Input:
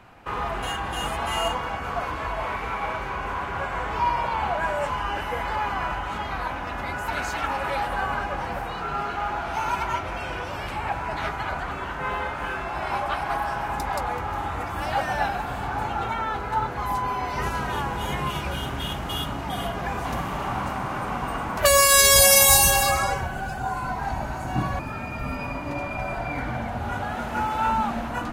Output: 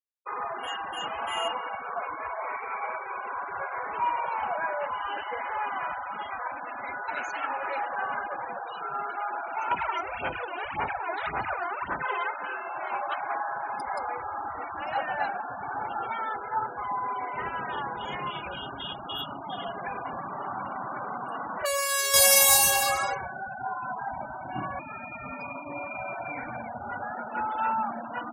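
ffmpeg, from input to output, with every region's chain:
ffmpeg -i in.wav -filter_complex "[0:a]asettb=1/sr,asplit=3[link_01][link_02][link_03];[link_01]atrim=end=9.714[link_04];[link_02]atrim=start=9.71:end=12.31,asetpts=PTS-STARTPTS,afade=type=in:duration=0.004:curve=qsin,afade=type=out:start_time=2.596:duration=0.004:curve=qsin,asplit=2[link_05][link_06];[link_06]adelay=33,volume=-11dB[link_07];[link_05][link_07]amix=inputs=2:normalize=0,atrim=end_sample=114660,asoftclip=type=hard:threshold=-23.5dB,aphaser=in_gain=1:out_gain=1:delay=2.9:decay=0.67:speed=1.8:type=sinusoidal[link_08];[link_03]atrim=start=12.306[link_09];[link_04][link_08]acrossfade=duration=0.004:curve1=hsin:curve2=qsin[link_10];[link_10][link_09]acrossfade=duration=0.004:curve1=qsin:curve2=hsin,asettb=1/sr,asplit=3[link_11][link_12][link_13];[link_11]atrim=end=20.084[link_14];[link_12]atrim=start=20.08:end=22.14,asetpts=PTS-STARTPTS,afade=type=in:duration=0.004:curve=qsin,afade=type=out:start_time=2.056:duration=0.004:curve=qsin,highshelf=frequency=3400:gain=-3.5,acompressor=threshold=-24dB:ratio=2:attack=3.2:release=140:knee=1:detection=peak,asplit=2[link_15][link_16];[link_16]adelay=30,volume=-14dB[link_17];[link_15][link_17]amix=inputs=2:normalize=0,atrim=end_sample=90846[link_18];[link_13]atrim=start=22.136[link_19];[link_14][link_18]acrossfade=duration=0.004:curve1=hsin:curve2=qsin[link_20];[link_20][link_19]acrossfade=duration=0.004:curve1=qsin:curve2=hsin,highpass=frequency=420:poles=1,afftfilt=real='re*gte(hypot(re,im),0.0355)':imag='im*gte(hypot(re,im),0.0355)':win_size=1024:overlap=0.75,volume=-3dB" out.wav

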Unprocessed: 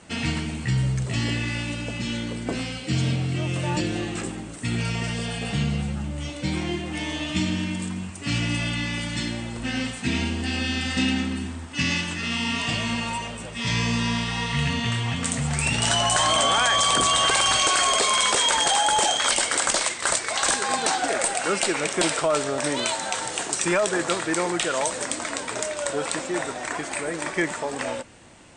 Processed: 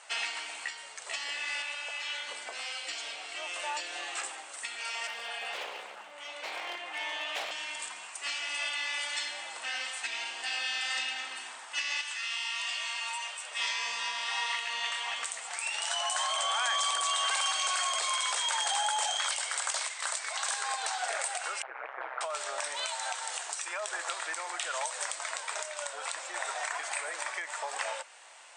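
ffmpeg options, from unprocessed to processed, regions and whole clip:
ffmpeg -i in.wav -filter_complex "[0:a]asettb=1/sr,asplit=3[link_01][link_02][link_03];[link_01]atrim=end=1.624[link_04];[link_02]atrim=start=1.62:end=2.28,asetpts=PTS-STARTPTS,afade=type=in:duration=0.004:curve=qsin,afade=type=out:start_time=0.656:duration=0.004:curve=qsin,acrossover=split=3500[link_05][link_06];[link_06]acompressor=threshold=-45dB:ratio=4:attack=1:release=60[link_07];[link_05][link_07]amix=inputs=2:normalize=0,highpass=frequency=720:poles=1[link_08];[link_03]atrim=start=2.276[link_09];[link_04][link_08]acrossfade=duration=0.004:curve1=hsin:curve2=qsin[link_10];[link_10][link_09]acrossfade=duration=0.004:curve1=qsin:curve2=hsin,asettb=1/sr,asplit=3[link_11][link_12][link_13];[link_11]atrim=end=5.074[link_14];[link_12]atrim=start=5.07:end=7.51,asetpts=PTS-STARTPTS,afade=type=in:duration=0.004:curve=qsin,afade=type=out:start_time=2.436:duration=0.004:curve=qsin,bass=frequency=250:gain=5,treble=frequency=4000:gain=-11,aeval=exprs='0.106*(abs(mod(val(0)/0.106+3,4)-2)-1)':channel_layout=same[link_15];[link_13]atrim=start=7.506[link_16];[link_14][link_15]acrossfade=duration=0.004:curve1=hsin:curve2=qsin[link_17];[link_17][link_16]acrossfade=duration=0.004:curve1=qsin:curve2=hsin,asettb=1/sr,asplit=3[link_18][link_19][link_20];[link_18]atrim=end=12.014[link_21];[link_19]atrim=start=12.01:end=13.51,asetpts=PTS-STARTPTS,afade=type=in:duration=0.004:curve=qsin,afade=type=out:start_time=1.496:duration=0.004:curve=qsin,highpass=frequency=1500:poles=1,acompressor=threshold=-32dB:ratio=3:attack=3.2:release=140:knee=1:detection=peak[link_22];[link_20]atrim=start=13.506[link_23];[link_21][link_22]acrossfade=duration=0.004:curve1=hsin:curve2=qsin[link_24];[link_24][link_23]acrossfade=duration=0.004:curve1=qsin:curve2=hsin,asettb=1/sr,asplit=3[link_25][link_26][link_27];[link_25]atrim=end=21.624[link_28];[link_26]atrim=start=21.62:end=22.21,asetpts=PTS-STARTPTS,afade=type=in:duration=0.004:curve=qsin,afade=type=out:start_time=0.586:duration=0.004:curve=qsin,lowpass=frequency=1700:width=0.5412,lowpass=frequency=1700:width=1.3066,tremolo=f=130:d=0.974[link_29];[link_27]atrim=start=22.206[link_30];[link_28][link_29]acrossfade=duration=0.004:curve1=hsin:curve2=qsin[link_31];[link_31][link_30]acrossfade=duration=0.004:curve1=qsin:curve2=hsin,acompressor=threshold=-24dB:ratio=6,alimiter=limit=-19dB:level=0:latency=1:release=476,highpass=frequency=700:width=0.5412,highpass=frequency=700:width=1.3066" out.wav

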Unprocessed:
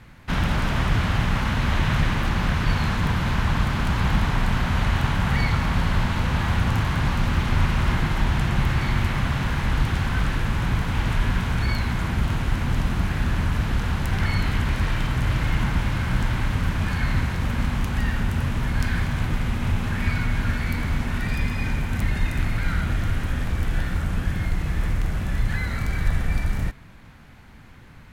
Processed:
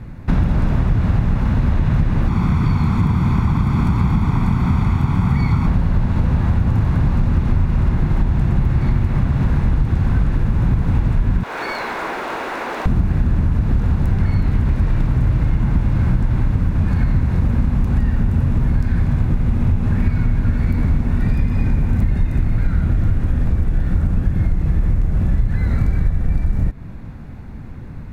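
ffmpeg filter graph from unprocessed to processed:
ffmpeg -i in.wav -filter_complex "[0:a]asettb=1/sr,asplit=3[link_01][link_02][link_03];[link_01]atrim=end=2.284[link_04];[link_02]atrim=start=2.28:end=5.67,asetpts=PTS-STARTPTS,afade=type=in:duration=0.004:curve=qsin,afade=type=out:start_time=3.386:duration=0.004:curve=qsin,highpass=frequency=140:poles=1,aecho=1:1:0.9:0.63,atrim=end_sample=149499[link_05];[link_03]atrim=start=5.666[link_06];[link_04][link_05]acrossfade=duration=0.004:curve1=hsin:curve2=qsin[link_07];[link_07][link_06]acrossfade=duration=0.004:curve1=qsin:curve2=hsin,asettb=1/sr,asplit=3[link_08][link_09][link_10];[link_08]atrim=end=11.434[link_11];[link_09]atrim=start=11.43:end=12.86,asetpts=PTS-STARTPTS,afade=type=in:duration=0.004:curve=qsin,afade=type=out:start_time=1.426:duration=0.004:curve=qsin,highpass=frequency=390:width=0.5412,highpass=frequency=390:width=1.3066,asplit=2[link_12][link_13];[link_13]highpass=frequency=720:poles=1,volume=12dB,asoftclip=type=tanh:threshold=-18dB[link_14];[link_12][link_14]amix=inputs=2:normalize=0,lowpass=frequency=4100:poles=1,volume=-6dB,acrusher=bits=6:mode=log:mix=0:aa=0.000001[link_15];[link_10]atrim=start=12.856[link_16];[link_11][link_15]acrossfade=duration=0.004:curve1=hsin:curve2=qsin[link_17];[link_17][link_16]acrossfade=duration=0.004:curve1=qsin:curve2=hsin,tiltshelf=frequency=840:gain=9,bandreject=frequency=3100:width=11,acompressor=threshold=-19dB:ratio=6,volume=6.5dB" out.wav

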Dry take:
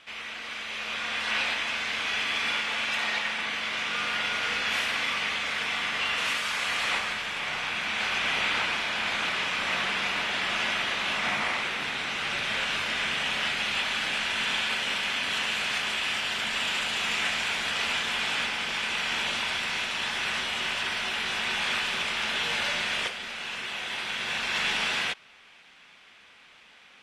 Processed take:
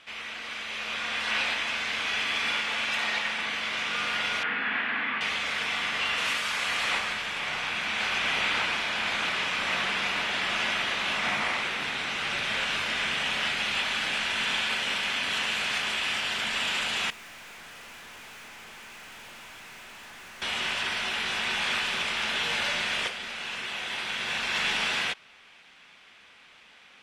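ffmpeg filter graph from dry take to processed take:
ffmpeg -i in.wav -filter_complex "[0:a]asettb=1/sr,asplit=3[link_01][link_02][link_03];[link_01]atrim=end=4.434[link_04];[link_02]atrim=start=4.43:end=5.21,asetpts=PTS-STARTPTS,afade=type=in:duration=0.004:curve=qsin,afade=type=out:start_time=0.776:duration=0.004:curve=qsin,acrossover=split=2600[link_05][link_06];[link_06]acompressor=threshold=-46dB:ratio=4:attack=1:release=60[link_07];[link_05][link_07]amix=inputs=2:normalize=0,highpass=140,equalizer=frequency=250:width_type=q:width=4:gain=8,equalizer=frequency=550:width_type=q:width=4:gain=-7,equalizer=frequency=1700:width_type=q:width=4:gain=6,lowpass=frequency=3700:width=0.5412,lowpass=frequency=3700:width=1.3066[link_08];[link_03]atrim=start=5.206[link_09];[link_04][link_08]acrossfade=duration=0.004:curve1=hsin:curve2=qsin[link_10];[link_10][link_09]acrossfade=duration=0.004:curve1=qsin:curve2=hsin,asettb=1/sr,asplit=3[link_11][link_12][link_13];[link_11]atrim=end=17.104[link_14];[link_12]atrim=start=17.1:end=20.42,asetpts=PTS-STARTPTS,afade=type=in:duration=0.004:curve=qsin,afade=type=out:start_time=3.316:duration=0.004:curve=qsin,lowpass=2500,aeval=exprs='(tanh(178*val(0)+0.15)-tanh(0.15))/178':channel_layout=same[link_15];[link_13]atrim=start=20.416[link_16];[link_14][link_15]acrossfade=duration=0.004:curve1=hsin:curve2=qsin[link_17];[link_17][link_16]acrossfade=duration=0.004:curve1=qsin:curve2=hsin" out.wav

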